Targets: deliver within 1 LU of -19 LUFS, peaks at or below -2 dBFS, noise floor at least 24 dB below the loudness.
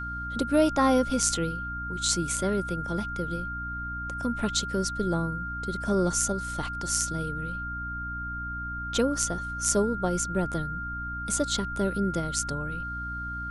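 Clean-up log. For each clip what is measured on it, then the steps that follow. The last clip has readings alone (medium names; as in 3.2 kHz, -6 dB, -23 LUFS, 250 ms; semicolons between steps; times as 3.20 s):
hum 60 Hz; highest harmonic 300 Hz; hum level -36 dBFS; steady tone 1.4 kHz; tone level -33 dBFS; loudness -28.5 LUFS; peak level -6.5 dBFS; loudness target -19.0 LUFS
-> de-hum 60 Hz, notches 5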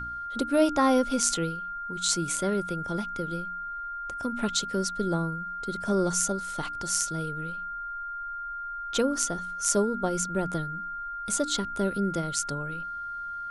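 hum not found; steady tone 1.4 kHz; tone level -33 dBFS
-> band-stop 1.4 kHz, Q 30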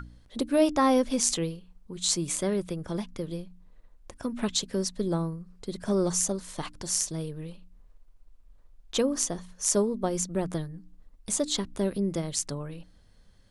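steady tone not found; loudness -28.5 LUFS; peak level -7.5 dBFS; loudness target -19.0 LUFS
-> trim +9.5 dB; peak limiter -2 dBFS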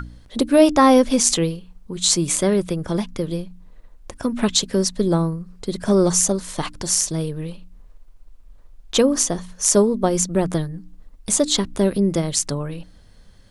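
loudness -19.5 LUFS; peak level -2.0 dBFS; noise floor -48 dBFS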